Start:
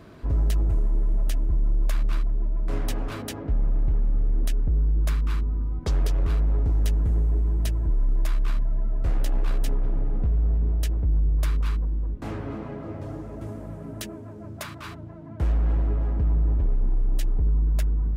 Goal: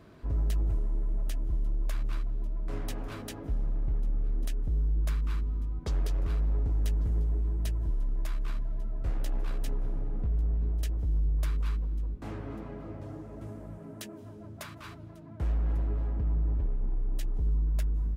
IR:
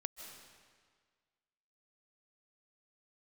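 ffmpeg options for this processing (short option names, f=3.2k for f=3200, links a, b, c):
-filter_complex "[0:a]asettb=1/sr,asplit=3[a][b][c];[a]atrim=end=13.784[d];[b]atrim=start=13.78:end=14.23,asetpts=PTS-STARTPTS,afade=t=in:d=0.004:c=qsin,afade=t=out:st=0.446:d=0.004:c=qsin,highpass=120[e];[c]atrim=start=14.226[f];[d][e]acrossfade=d=0.004:c1=hsin:c2=qsin[g];[g][f]acrossfade=d=0.004:c1=qsin:c2=hsin,aecho=1:1:1145:0.0631,asplit=2[h][i];[1:a]atrim=start_sample=2205,adelay=19[j];[i][j]afir=irnorm=-1:irlink=0,volume=-14.5dB[k];[h][k]amix=inputs=2:normalize=0,volume=-7dB"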